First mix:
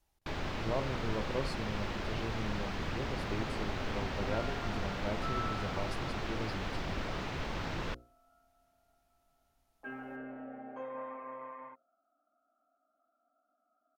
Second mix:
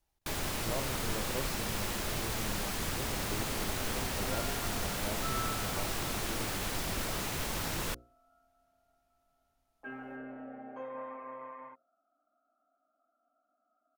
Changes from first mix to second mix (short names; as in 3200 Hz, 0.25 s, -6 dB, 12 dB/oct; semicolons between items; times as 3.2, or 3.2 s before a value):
speech -3.5 dB; first sound: remove air absorption 210 m